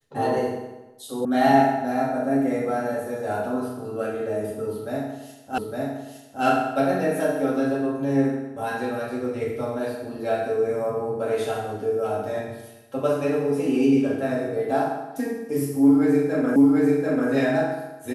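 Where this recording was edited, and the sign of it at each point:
1.25 sound cut off
5.58 repeat of the last 0.86 s
16.56 repeat of the last 0.74 s

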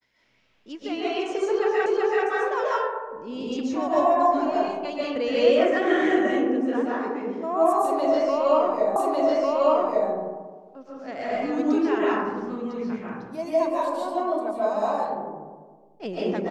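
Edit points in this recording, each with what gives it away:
1.86 repeat of the last 0.38 s
8.96 repeat of the last 1.15 s

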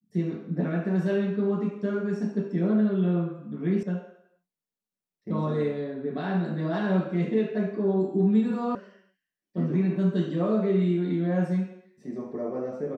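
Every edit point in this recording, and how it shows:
3.83 sound cut off
8.75 sound cut off

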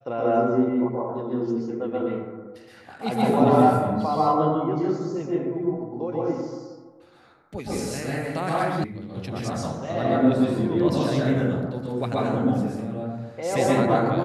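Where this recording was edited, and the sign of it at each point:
8.84 sound cut off

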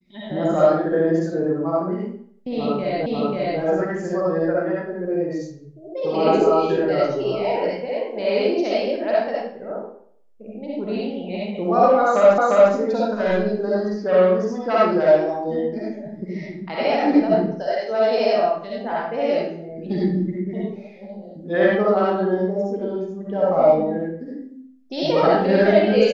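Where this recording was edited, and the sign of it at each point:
3.06 repeat of the last 0.54 s
12.38 repeat of the last 0.35 s

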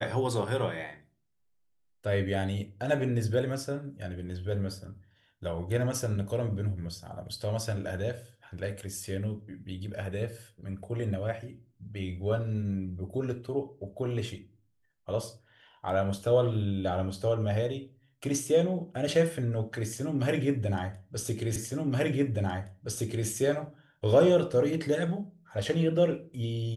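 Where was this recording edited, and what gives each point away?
21.56 repeat of the last 1.72 s

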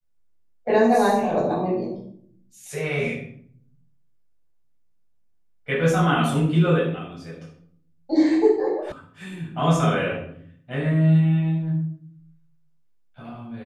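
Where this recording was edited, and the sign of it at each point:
8.92 sound cut off

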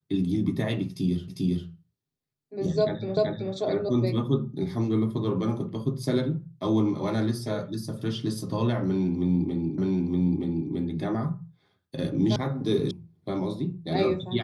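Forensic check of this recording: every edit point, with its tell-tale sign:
1.28 repeat of the last 0.4 s
3.17 repeat of the last 0.38 s
9.78 repeat of the last 0.92 s
12.36 sound cut off
12.91 sound cut off

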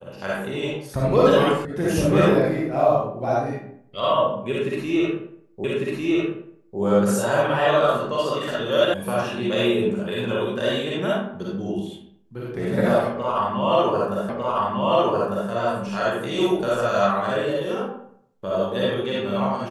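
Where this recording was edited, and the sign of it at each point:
1.65 sound cut off
5.64 repeat of the last 1.15 s
8.94 sound cut off
14.29 repeat of the last 1.2 s

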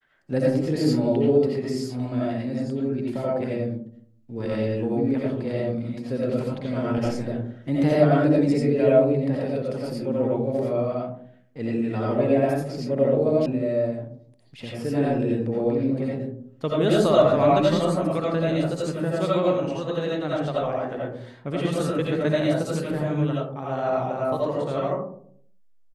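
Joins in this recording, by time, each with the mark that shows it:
13.46 sound cut off

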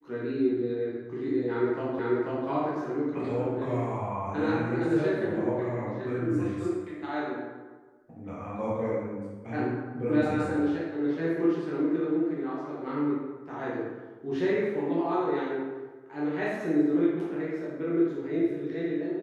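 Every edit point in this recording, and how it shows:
1.99 repeat of the last 0.49 s

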